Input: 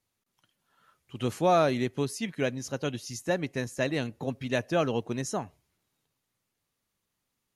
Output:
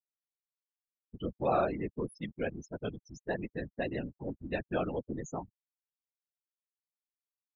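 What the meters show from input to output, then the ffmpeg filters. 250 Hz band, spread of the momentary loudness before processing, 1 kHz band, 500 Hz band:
-6.5 dB, 11 LU, -6.0 dB, -6.5 dB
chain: -af "aeval=exprs='val(0)+0.00251*(sin(2*PI*60*n/s)+sin(2*PI*2*60*n/s)/2+sin(2*PI*3*60*n/s)/3+sin(2*PI*4*60*n/s)/4+sin(2*PI*5*60*n/s)/5)':c=same,afftfilt=real='re*gte(hypot(re,im),0.0447)':imag='im*gte(hypot(re,im),0.0447)':win_size=1024:overlap=0.75,afftfilt=real='hypot(re,im)*cos(2*PI*random(0))':imag='hypot(re,im)*sin(2*PI*random(1))':win_size=512:overlap=0.75"

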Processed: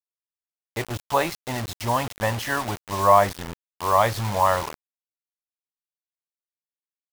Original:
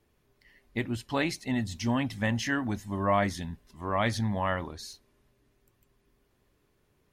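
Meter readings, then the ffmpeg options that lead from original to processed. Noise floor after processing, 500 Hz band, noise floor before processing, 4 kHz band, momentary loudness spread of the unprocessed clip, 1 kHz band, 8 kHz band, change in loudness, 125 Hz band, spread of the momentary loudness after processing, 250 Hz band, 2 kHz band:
under -85 dBFS, +9.0 dB, -71 dBFS, +4.5 dB, 12 LU, +11.5 dB, +7.5 dB, +7.0 dB, +2.5 dB, 15 LU, -3.5 dB, +3.5 dB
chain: -af "equalizer=f=250:t=o:w=1:g=-12,equalizer=f=500:t=o:w=1:g=5,equalizer=f=1000:t=o:w=1:g=9,equalizer=f=2000:t=o:w=1:g=-4,equalizer=f=8000:t=o:w=1:g=-10,acrusher=bits=5:mix=0:aa=0.000001,volume=1.68"

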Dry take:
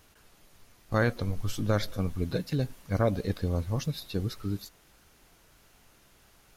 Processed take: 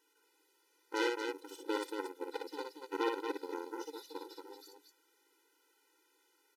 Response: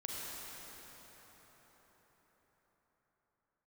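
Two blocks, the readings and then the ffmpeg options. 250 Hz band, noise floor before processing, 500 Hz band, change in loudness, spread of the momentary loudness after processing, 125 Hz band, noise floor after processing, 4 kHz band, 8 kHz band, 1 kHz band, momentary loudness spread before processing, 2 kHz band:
-9.5 dB, -61 dBFS, -6.0 dB, -8.5 dB, 15 LU, under -40 dB, -74 dBFS, -5.0 dB, -8.0 dB, -2.0 dB, 6 LU, -5.0 dB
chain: -af "aeval=exprs='0.299*(cos(1*acos(clip(val(0)/0.299,-1,1)))-cos(1*PI/2))+0.0299*(cos(4*acos(clip(val(0)/0.299,-1,1)))-cos(4*PI/2))+0.0596*(cos(7*acos(clip(val(0)/0.299,-1,1)))-cos(7*PI/2))':c=same,aecho=1:1:58.31|230.3:0.631|0.501,afftfilt=real='re*eq(mod(floor(b*sr/1024/260),2),1)':imag='im*eq(mod(floor(b*sr/1024/260),2),1)':win_size=1024:overlap=0.75,volume=0.794"

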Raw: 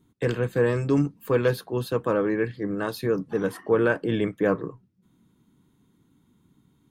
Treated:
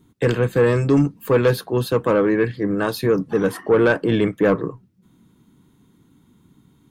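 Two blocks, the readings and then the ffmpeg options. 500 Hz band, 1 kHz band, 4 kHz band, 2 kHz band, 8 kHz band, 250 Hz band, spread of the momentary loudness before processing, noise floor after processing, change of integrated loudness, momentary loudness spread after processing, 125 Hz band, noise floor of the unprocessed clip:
+6.0 dB, +6.0 dB, +7.0 dB, +5.5 dB, +7.0 dB, +6.5 dB, 6 LU, -58 dBFS, +6.0 dB, 5 LU, +6.5 dB, -65 dBFS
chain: -af "asoftclip=type=tanh:threshold=0.178,volume=2.37"

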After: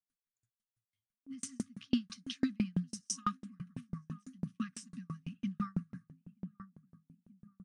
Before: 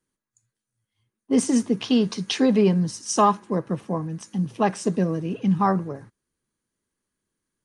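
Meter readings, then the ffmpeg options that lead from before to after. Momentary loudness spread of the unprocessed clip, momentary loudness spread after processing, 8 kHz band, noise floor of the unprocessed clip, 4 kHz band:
9 LU, 14 LU, -12.5 dB, under -85 dBFS, -15.0 dB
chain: -filter_complex "[0:a]afftfilt=real='re*(1-between(b*sr/4096,270,1100))':imag='im*(1-between(b*sr/4096,270,1100))':win_size=4096:overlap=0.75,asplit=2[s0][s1];[s1]adelay=930,lowpass=f=840:p=1,volume=0.224,asplit=2[s2][s3];[s3]adelay=930,lowpass=f=840:p=1,volume=0.54,asplit=2[s4][s5];[s5]adelay=930,lowpass=f=840:p=1,volume=0.54,asplit=2[s6][s7];[s7]adelay=930,lowpass=f=840:p=1,volume=0.54,asplit=2[s8][s9];[s9]adelay=930,lowpass=f=840:p=1,volume=0.54,asplit=2[s10][s11];[s11]adelay=930,lowpass=f=840:p=1,volume=0.54[s12];[s2][s4][s6][s8][s10][s12]amix=inputs=6:normalize=0[s13];[s0][s13]amix=inputs=2:normalize=0,aeval=exprs='val(0)*pow(10,-40*if(lt(mod(6*n/s,1),2*abs(6)/1000),1-mod(6*n/s,1)/(2*abs(6)/1000),(mod(6*n/s,1)-2*abs(6)/1000)/(1-2*abs(6)/1000))/20)':c=same,volume=0.531"

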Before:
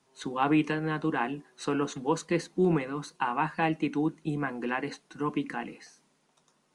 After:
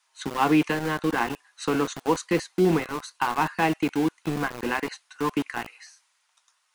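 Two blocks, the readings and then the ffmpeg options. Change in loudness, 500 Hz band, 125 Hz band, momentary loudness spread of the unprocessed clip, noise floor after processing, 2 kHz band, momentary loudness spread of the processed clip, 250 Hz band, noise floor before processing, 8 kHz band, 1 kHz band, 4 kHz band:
+4.0 dB, +4.0 dB, +2.0 dB, 10 LU, -71 dBFS, +5.0 dB, 10 LU, +3.5 dB, -71 dBFS, +7.0 dB, +4.5 dB, +7.0 dB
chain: -filter_complex "[0:a]adynamicequalizer=threshold=0.00447:dfrequency=160:dqfactor=3.9:tfrequency=160:tqfactor=3.9:attack=5:release=100:ratio=0.375:range=2.5:mode=cutabove:tftype=bell,acrossover=split=970[s0][s1];[s0]aeval=exprs='val(0)*gte(abs(val(0)),0.0224)':c=same[s2];[s2][s1]amix=inputs=2:normalize=0,volume=1.68"

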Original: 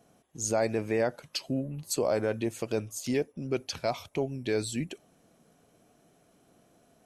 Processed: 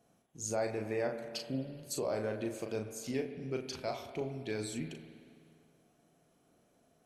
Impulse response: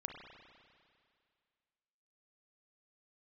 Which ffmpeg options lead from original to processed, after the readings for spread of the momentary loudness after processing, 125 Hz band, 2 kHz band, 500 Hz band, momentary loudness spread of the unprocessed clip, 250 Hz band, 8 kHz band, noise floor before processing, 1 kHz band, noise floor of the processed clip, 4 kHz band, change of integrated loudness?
7 LU, -6.5 dB, -6.5 dB, -6.5 dB, 6 LU, -6.5 dB, -7.0 dB, -65 dBFS, -6.5 dB, -71 dBFS, -7.0 dB, -6.5 dB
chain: -filter_complex "[0:a]asplit=2[s0][s1];[1:a]atrim=start_sample=2205,adelay=38[s2];[s1][s2]afir=irnorm=-1:irlink=0,volume=0.794[s3];[s0][s3]amix=inputs=2:normalize=0,volume=0.398"

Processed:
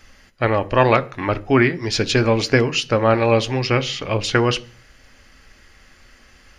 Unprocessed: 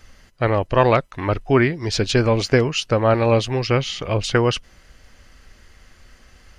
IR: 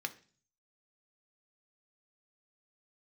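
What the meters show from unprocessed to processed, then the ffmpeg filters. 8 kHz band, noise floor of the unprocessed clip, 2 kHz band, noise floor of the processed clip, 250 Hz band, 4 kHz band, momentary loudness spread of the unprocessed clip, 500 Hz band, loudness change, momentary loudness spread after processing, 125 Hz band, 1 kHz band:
+1.0 dB, -52 dBFS, +3.0 dB, -51 dBFS, +1.0 dB, +2.0 dB, 7 LU, 0.0 dB, +1.0 dB, 7 LU, -1.0 dB, +1.5 dB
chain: -filter_complex "[0:a]asplit=2[s0][s1];[1:a]atrim=start_sample=2205[s2];[s1][s2]afir=irnorm=-1:irlink=0,volume=1.41[s3];[s0][s3]amix=inputs=2:normalize=0,volume=0.531"

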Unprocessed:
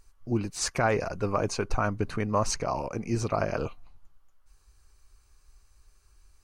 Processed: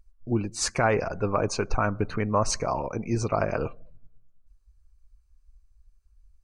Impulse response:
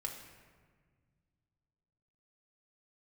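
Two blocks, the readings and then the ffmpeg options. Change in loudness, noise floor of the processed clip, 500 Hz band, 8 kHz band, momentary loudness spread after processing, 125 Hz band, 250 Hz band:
+2.0 dB, -64 dBFS, +2.5 dB, +2.0 dB, 5 LU, +2.0 dB, +2.0 dB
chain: -filter_complex "[0:a]asplit=2[s0][s1];[1:a]atrim=start_sample=2205,lowshelf=f=210:g=-9.5[s2];[s1][s2]afir=irnorm=-1:irlink=0,volume=0.168[s3];[s0][s3]amix=inputs=2:normalize=0,afftdn=nr=20:nf=-46,volume=1.19"

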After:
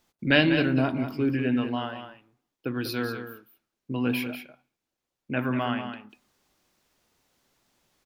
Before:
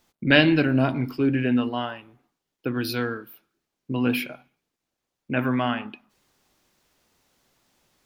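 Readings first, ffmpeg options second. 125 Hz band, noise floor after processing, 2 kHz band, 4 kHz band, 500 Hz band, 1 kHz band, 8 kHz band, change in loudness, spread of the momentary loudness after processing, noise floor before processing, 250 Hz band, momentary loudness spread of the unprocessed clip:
-3.5 dB, under -85 dBFS, -3.0 dB, -3.0 dB, -3.0 dB, -3.0 dB, -3.0 dB, -3.5 dB, 17 LU, -83 dBFS, -3.0 dB, 16 LU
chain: -af "aecho=1:1:193:0.355,volume=0.668"

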